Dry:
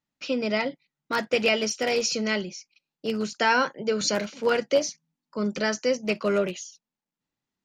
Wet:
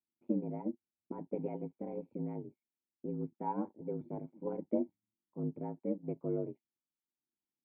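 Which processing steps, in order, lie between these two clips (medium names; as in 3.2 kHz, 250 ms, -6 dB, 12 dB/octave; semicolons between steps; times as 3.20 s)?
cascade formant filter u; ring modulator 50 Hz; upward expansion 1.5:1, over -50 dBFS; trim +5.5 dB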